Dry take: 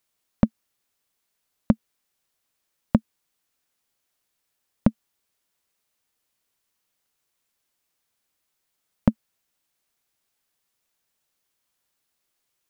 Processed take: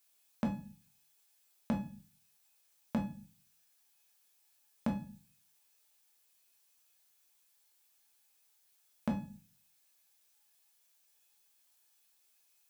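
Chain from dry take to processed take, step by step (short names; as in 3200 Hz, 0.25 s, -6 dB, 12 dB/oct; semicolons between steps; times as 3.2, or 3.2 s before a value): HPF 52 Hz; notches 50/100/150/200 Hz; resonator 850 Hz, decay 0.39 s, mix 80%; negative-ratio compressor -33 dBFS, ratio -1; tilt +2.5 dB/oct; notch 1900 Hz, Q 23; reverb RT60 0.35 s, pre-delay 5 ms, DRR 1 dB; gain +6 dB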